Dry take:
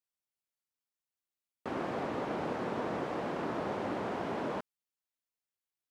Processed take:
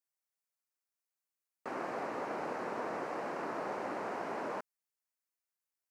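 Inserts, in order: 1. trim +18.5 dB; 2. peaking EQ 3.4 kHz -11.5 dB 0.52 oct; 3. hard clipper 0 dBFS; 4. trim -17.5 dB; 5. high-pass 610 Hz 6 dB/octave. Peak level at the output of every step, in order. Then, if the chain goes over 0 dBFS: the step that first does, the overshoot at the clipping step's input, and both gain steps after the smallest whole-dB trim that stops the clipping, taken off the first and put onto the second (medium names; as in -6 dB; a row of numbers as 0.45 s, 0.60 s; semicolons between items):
-4.0 dBFS, -4.0 dBFS, -4.0 dBFS, -21.5 dBFS, -26.0 dBFS; nothing clips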